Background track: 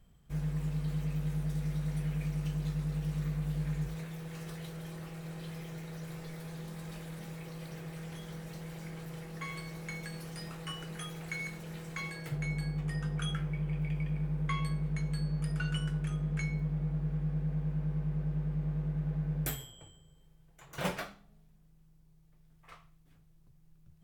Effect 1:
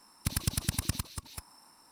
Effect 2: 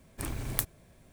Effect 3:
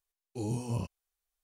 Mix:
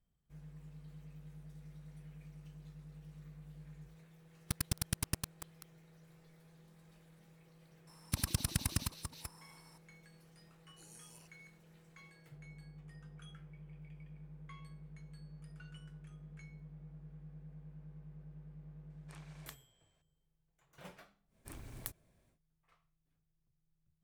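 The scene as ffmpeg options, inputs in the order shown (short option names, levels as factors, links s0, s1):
-filter_complex "[1:a]asplit=2[s0][s1];[2:a]asplit=2[s2][s3];[0:a]volume=0.112[s4];[s0]aeval=exprs='val(0)*gte(abs(val(0)),0.0447)':c=same[s5];[3:a]aderivative[s6];[s2]highpass=650,lowpass=6100[s7];[s5]atrim=end=1.91,asetpts=PTS-STARTPTS,volume=0.562,afade=t=in:d=0.004:c=hsin,afade=t=out:st=1.906:d=0.004:c=hsin,adelay=4240[s8];[s1]atrim=end=1.91,asetpts=PTS-STARTPTS,volume=0.668,afade=t=in:d=0.004:c=hsin,afade=t=out:st=1.906:d=0.004:c=hsin,adelay=7870[s9];[s6]atrim=end=1.43,asetpts=PTS-STARTPTS,volume=0.447,afade=t=in:d=0.004:c=hsin,afade=t=out:st=1.426:d=0.004:c=hsin,adelay=10410[s10];[s7]atrim=end=1.12,asetpts=PTS-STARTPTS,volume=0.188,afade=t=in:d=0.004:c=hsin,afade=t=out:st=1.116:d=0.004:c=hsin,adelay=18900[s11];[s3]atrim=end=1.12,asetpts=PTS-STARTPTS,volume=0.2,afade=t=in:d=0.1,afade=t=out:st=1.02:d=0.1,adelay=21270[s12];[s4][s8][s9][s10][s11][s12]amix=inputs=6:normalize=0"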